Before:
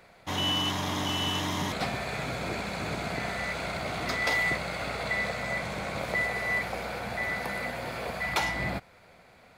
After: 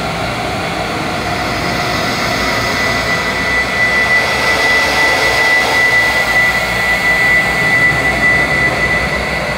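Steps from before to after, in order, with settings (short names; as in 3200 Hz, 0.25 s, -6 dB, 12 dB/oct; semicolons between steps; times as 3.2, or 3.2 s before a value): Paulstretch 14×, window 0.25 s, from 3.93; maximiser +17 dB; gain -1.5 dB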